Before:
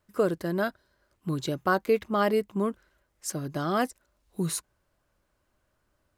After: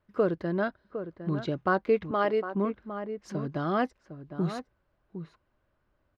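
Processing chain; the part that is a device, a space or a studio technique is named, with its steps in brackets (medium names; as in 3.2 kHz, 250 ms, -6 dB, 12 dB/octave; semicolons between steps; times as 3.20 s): shout across a valley (distance through air 250 m; echo from a far wall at 130 m, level -10 dB); 2.11–2.55 s: high-pass 300 Hz 12 dB/octave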